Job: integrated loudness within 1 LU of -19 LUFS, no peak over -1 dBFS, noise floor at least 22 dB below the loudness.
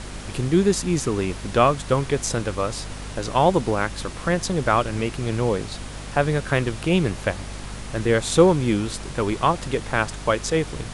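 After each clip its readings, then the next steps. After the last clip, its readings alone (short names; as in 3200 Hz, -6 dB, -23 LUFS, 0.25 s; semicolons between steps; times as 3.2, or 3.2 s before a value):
hum 50 Hz; harmonics up to 250 Hz; hum level -34 dBFS; noise floor -35 dBFS; noise floor target -45 dBFS; loudness -22.5 LUFS; peak -3.0 dBFS; loudness target -19.0 LUFS
-> notches 50/100/150/200/250 Hz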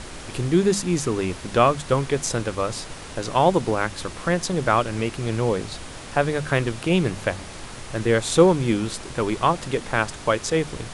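hum none; noise floor -38 dBFS; noise floor target -45 dBFS
-> noise print and reduce 7 dB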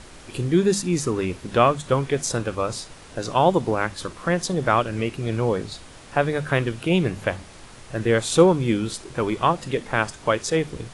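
noise floor -44 dBFS; noise floor target -45 dBFS
-> noise print and reduce 6 dB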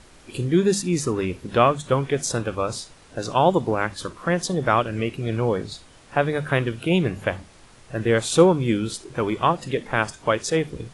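noise floor -50 dBFS; loudness -23.0 LUFS; peak -3.5 dBFS; loudness target -19.0 LUFS
-> gain +4 dB; limiter -1 dBFS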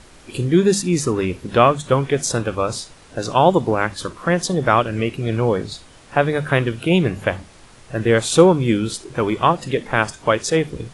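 loudness -19.0 LUFS; peak -1.0 dBFS; noise floor -46 dBFS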